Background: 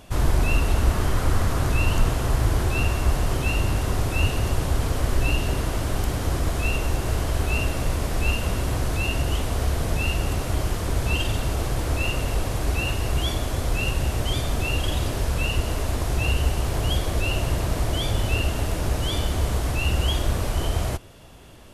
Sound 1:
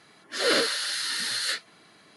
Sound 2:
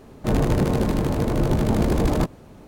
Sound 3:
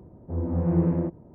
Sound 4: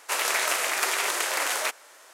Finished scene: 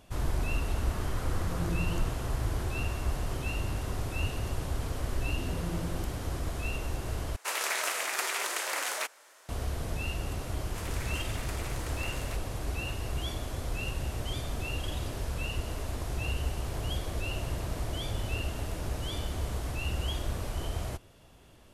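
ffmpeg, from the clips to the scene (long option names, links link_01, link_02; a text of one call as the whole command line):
ffmpeg -i bed.wav -i cue0.wav -i cue1.wav -i cue2.wav -i cue3.wav -filter_complex "[3:a]asplit=2[link_01][link_02];[4:a]asplit=2[link_03][link_04];[0:a]volume=-10dB[link_05];[link_01]aecho=1:1:6.1:0.65[link_06];[link_05]asplit=2[link_07][link_08];[link_07]atrim=end=7.364[link_09];[link_03]atrim=end=2.13,asetpts=PTS-STARTPTS,volume=-6dB[link_10];[link_08]atrim=start=9.486[link_11];[link_06]atrim=end=1.34,asetpts=PTS-STARTPTS,volume=-16.5dB,afade=type=in:duration=0.004:curve=hsin,afade=type=out:start_time=1.336:duration=0.004:curve=hsin,adelay=930[link_12];[link_02]atrim=end=1.34,asetpts=PTS-STARTPTS,volume=-14.5dB,afade=type=in:duration=0.004:curve=hsin,afade=type=out:start_time=1.336:duration=0.004:curve=hsin,adelay=4960[link_13];[link_04]atrim=end=2.13,asetpts=PTS-STARTPTS,volume=-18dB,afade=type=in:duration=0.004:curve=hsin,afade=type=out:start_time=2.126:duration=0.004:curve=hsin,adelay=470106S[link_14];[link_09][link_10]acrossfade=duration=0.004:curve1=hsin:curve2=hsin[link_15];[link_15][link_11]acrossfade=duration=0.004:curve1=hsin:curve2=hsin[link_16];[link_16][link_12][link_13][link_14]amix=inputs=4:normalize=0" out.wav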